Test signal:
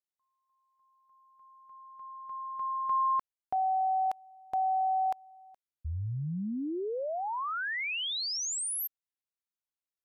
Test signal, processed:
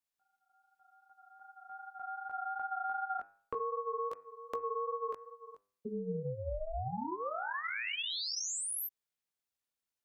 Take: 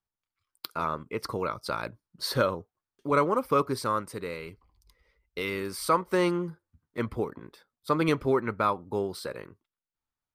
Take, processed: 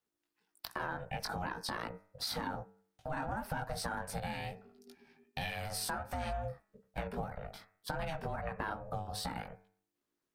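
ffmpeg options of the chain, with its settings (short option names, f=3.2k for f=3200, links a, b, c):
-af "flanger=delay=16.5:depth=3.4:speed=2.6,alimiter=limit=-23dB:level=0:latency=1:release=37,acompressor=threshold=-42dB:ratio=6:attack=15:release=110:knee=6:detection=rms,bandreject=f=99.14:t=h:w=4,bandreject=f=198.28:t=h:w=4,bandreject=f=297.42:t=h:w=4,bandreject=f=396.56:t=h:w=4,bandreject=f=495.7:t=h:w=4,bandreject=f=594.84:t=h:w=4,bandreject=f=693.98:t=h:w=4,bandreject=f=793.12:t=h:w=4,bandreject=f=892.26:t=h:w=4,bandreject=f=991.4:t=h:w=4,bandreject=f=1.09054k:t=h:w=4,bandreject=f=1.18968k:t=h:w=4,bandreject=f=1.28882k:t=h:w=4,bandreject=f=1.38796k:t=h:w=4,bandreject=f=1.4871k:t=h:w=4,bandreject=f=1.58624k:t=h:w=4,bandreject=f=1.68538k:t=h:w=4,bandreject=f=1.78452k:t=h:w=4,bandreject=f=1.88366k:t=h:w=4,bandreject=f=1.9828k:t=h:w=4,bandreject=f=2.08194k:t=h:w=4,bandreject=f=2.18108k:t=h:w=4,bandreject=f=2.28022k:t=h:w=4,afreqshift=27,aeval=exprs='val(0)*sin(2*PI*320*n/s)':c=same,volume=9dB"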